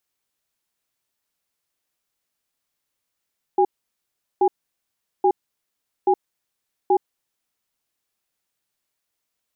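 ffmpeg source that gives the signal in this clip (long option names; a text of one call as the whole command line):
ffmpeg -f lavfi -i "aevalsrc='0.158*(sin(2*PI*377*t)+sin(2*PI*814*t))*clip(min(mod(t,0.83),0.07-mod(t,0.83))/0.005,0,1)':duration=3.54:sample_rate=44100" out.wav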